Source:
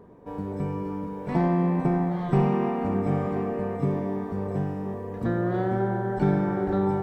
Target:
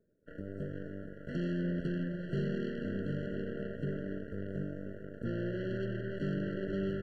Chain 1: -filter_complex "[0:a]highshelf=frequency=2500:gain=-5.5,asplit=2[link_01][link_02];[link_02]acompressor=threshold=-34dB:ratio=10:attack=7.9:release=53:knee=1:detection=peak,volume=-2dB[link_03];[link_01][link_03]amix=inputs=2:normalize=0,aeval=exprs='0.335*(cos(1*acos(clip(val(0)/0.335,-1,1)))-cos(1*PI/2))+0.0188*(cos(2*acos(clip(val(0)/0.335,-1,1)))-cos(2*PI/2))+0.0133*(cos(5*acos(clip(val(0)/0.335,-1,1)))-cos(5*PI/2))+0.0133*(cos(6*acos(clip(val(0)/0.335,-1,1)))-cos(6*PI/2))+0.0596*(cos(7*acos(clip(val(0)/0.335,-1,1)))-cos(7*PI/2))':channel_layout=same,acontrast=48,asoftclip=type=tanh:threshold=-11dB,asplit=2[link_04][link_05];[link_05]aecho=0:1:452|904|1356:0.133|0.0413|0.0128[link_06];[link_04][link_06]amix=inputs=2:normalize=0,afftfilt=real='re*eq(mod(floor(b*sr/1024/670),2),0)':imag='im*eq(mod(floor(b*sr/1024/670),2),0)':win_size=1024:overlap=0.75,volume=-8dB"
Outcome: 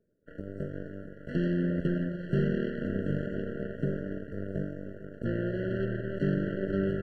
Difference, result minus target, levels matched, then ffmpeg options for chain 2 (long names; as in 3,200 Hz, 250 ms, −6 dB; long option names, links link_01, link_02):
soft clipping: distortion −9 dB
-filter_complex "[0:a]highshelf=frequency=2500:gain=-5.5,asplit=2[link_01][link_02];[link_02]acompressor=threshold=-34dB:ratio=10:attack=7.9:release=53:knee=1:detection=peak,volume=-2dB[link_03];[link_01][link_03]amix=inputs=2:normalize=0,aeval=exprs='0.335*(cos(1*acos(clip(val(0)/0.335,-1,1)))-cos(1*PI/2))+0.0188*(cos(2*acos(clip(val(0)/0.335,-1,1)))-cos(2*PI/2))+0.0133*(cos(5*acos(clip(val(0)/0.335,-1,1)))-cos(5*PI/2))+0.0133*(cos(6*acos(clip(val(0)/0.335,-1,1)))-cos(6*PI/2))+0.0596*(cos(7*acos(clip(val(0)/0.335,-1,1)))-cos(7*PI/2))':channel_layout=same,acontrast=48,asoftclip=type=tanh:threshold=-20.5dB,asplit=2[link_04][link_05];[link_05]aecho=0:1:452|904|1356:0.133|0.0413|0.0128[link_06];[link_04][link_06]amix=inputs=2:normalize=0,afftfilt=real='re*eq(mod(floor(b*sr/1024/670),2),0)':imag='im*eq(mod(floor(b*sr/1024/670),2),0)':win_size=1024:overlap=0.75,volume=-8dB"